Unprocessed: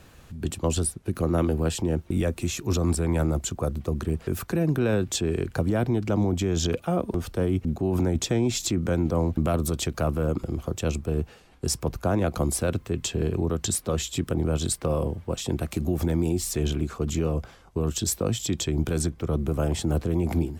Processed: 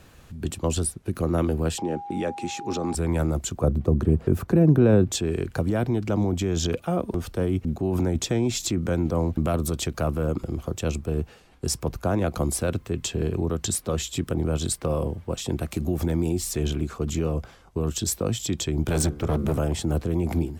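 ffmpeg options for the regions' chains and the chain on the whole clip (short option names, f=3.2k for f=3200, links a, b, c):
-filter_complex "[0:a]asettb=1/sr,asplit=3[a][b][c];[a]atrim=end=1.784[d];[b]atrim=start=1.78:end=2.95,asetpts=PTS-STARTPTS,afade=t=in:d=0.004:c=qsin,afade=t=out:st=1.166:d=0.004:c=qsin,highshelf=f=5.5k:g=-4.5,aeval=exprs='val(0)+0.02*sin(2*PI*810*n/s)':c=same,highpass=210,lowpass=7.7k[e];[c]atrim=start=2.946[f];[d][e]acrossfade=d=0.004:c1=hsin:c2=qsin[g];[g][f]acrossfade=d=0.004:c1=qsin:c2=hsin,asettb=1/sr,asplit=3[h][i][j];[h]atrim=end=3.634[k];[i]atrim=start=3.63:end=5.12,asetpts=PTS-STARTPTS,afade=t=in:d=0.004:c=qsin,afade=t=out:st=1.486:d=0.004:c=qsin,highpass=55,tiltshelf=f=1.2k:g=7.5[l];[j]atrim=start=5.116[m];[k][l]acrossfade=d=0.004:c1=hsin:c2=qsin[n];[n][m]acrossfade=d=0.004:c1=qsin:c2=hsin,asettb=1/sr,asplit=3[o][p][q];[o]atrim=end=18.884[r];[p]atrim=start=18.88:end=19.59,asetpts=PTS-STARTPTS,afade=t=in:d=0.004:c=qsin,afade=t=out:st=0.706:d=0.004:c=qsin,bandreject=f=72.63:t=h:w=4,bandreject=f=145.26:t=h:w=4,bandreject=f=217.89:t=h:w=4,bandreject=f=290.52:t=h:w=4,bandreject=f=363.15:t=h:w=4,bandreject=f=435.78:t=h:w=4,bandreject=f=508.41:t=h:w=4,bandreject=f=581.04:t=h:w=4,bandreject=f=653.67:t=h:w=4,bandreject=f=726.3:t=h:w=4,bandreject=f=798.93:t=h:w=4,bandreject=f=871.56:t=h:w=4,bandreject=f=944.19:t=h:w=4,bandreject=f=1.01682k:t=h:w=4,bandreject=f=1.08945k:t=h:w=4,bandreject=f=1.16208k:t=h:w=4,bandreject=f=1.23471k:t=h:w=4,bandreject=f=1.30734k:t=h:w=4,bandreject=f=1.37997k:t=h:w=4,bandreject=f=1.4526k:t=h:w=4,bandreject=f=1.52523k:t=h:w=4,bandreject=f=1.59786k:t=h:w=4,acontrast=34,asoftclip=type=hard:threshold=-18dB[s];[q]atrim=start=19.586[t];[r][s]acrossfade=d=0.004:c1=hsin:c2=qsin[u];[u][t]acrossfade=d=0.004:c1=qsin:c2=hsin"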